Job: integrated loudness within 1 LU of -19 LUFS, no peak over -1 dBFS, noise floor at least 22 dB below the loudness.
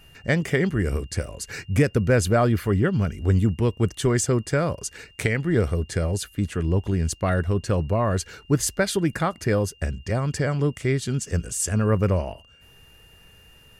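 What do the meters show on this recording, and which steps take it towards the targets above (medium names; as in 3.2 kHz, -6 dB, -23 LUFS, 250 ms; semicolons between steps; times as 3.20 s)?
steady tone 2.8 kHz; tone level -53 dBFS; loudness -24.0 LUFS; peak level -9.5 dBFS; loudness target -19.0 LUFS
-> band-stop 2.8 kHz, Q 30; trim +5 dB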